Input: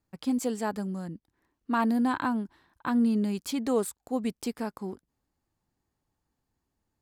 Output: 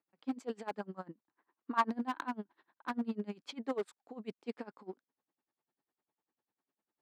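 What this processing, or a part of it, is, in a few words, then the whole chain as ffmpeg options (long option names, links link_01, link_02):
helicopter radio: -filter_complex "[0:a]highpass=300,lowpass=3000,aeval=exprs='val(0)*pow(10,-26*(0.5-0.5*cos(2*PI*10*n/s))/20)':channel_layout=same,asoftclip=type=hard:threshold=-28.5dB,highpass=100,asettb=1/sr,asplit=3[link_01][link_02][link_03];[link_01]atrim=end=0.804[link_04];[link_02]atrim=start=0.8:end=1.9,asetpts=PTS-STARTPTS,afade=type=in:duration=0.004:curve=qsin,afade=type=out:start_time=1.096:duration=0.004:curve=qsin,equalizer=frequency=1100:width=1.1:gain=9[link_05];[link_03]atrim=start=1.896[link_06];[link_04][link_05]acrossfade=duration=0.004:curve1=hsin:curve2=qsin[link_07];[link_07][link_06]acrossfade=duration=0.004:curve1=qsin:curve2=hsin"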